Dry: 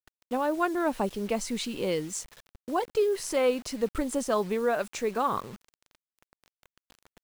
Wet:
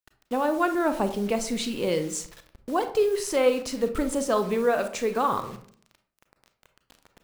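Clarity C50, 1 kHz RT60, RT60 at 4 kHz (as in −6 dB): 10.5 dB, 0.50 s, 0.30 s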